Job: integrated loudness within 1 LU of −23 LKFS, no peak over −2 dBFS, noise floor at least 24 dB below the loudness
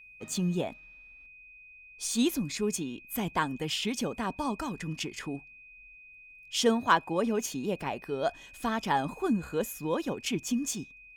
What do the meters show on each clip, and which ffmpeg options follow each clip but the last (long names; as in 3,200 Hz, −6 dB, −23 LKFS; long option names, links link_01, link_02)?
interfering tone 2,500 Hz; level of the tone −50 dBFS; integrated loudness −31.0 LKFS; sample peak −11.0 dBFS; target loudness −23.0 LKFS
→ -af "bandreject=frequency=2500:width=30"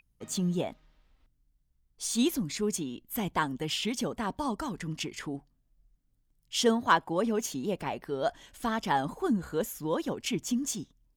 interfering tone none found; integrated loudness −31.5 LKFS; sample peak −11.0 dBFS; target loudness −23.0 LKFS
→ -af "volume=8.5dB"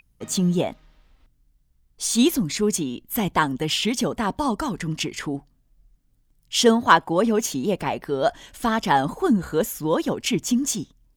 integrated loudness −23.0 LKFS; sample peak −2.5 dBFS; background noise floor −64 dBFS